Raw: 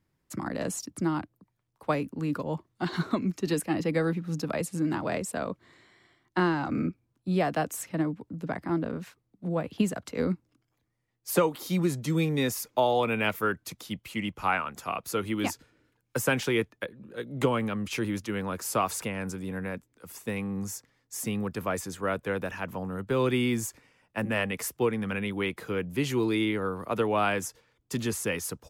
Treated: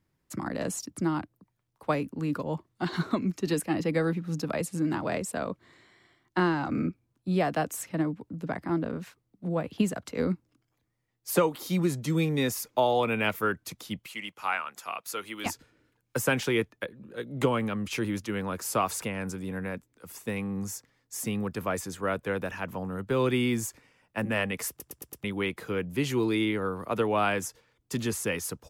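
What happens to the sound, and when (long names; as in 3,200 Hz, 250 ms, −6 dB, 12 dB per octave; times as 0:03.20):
0:14.06–0:15.46: high-pass filter 1,100 Hz 6 dB per octave
0:24.69: stutter in place 0.11 s, 5 plays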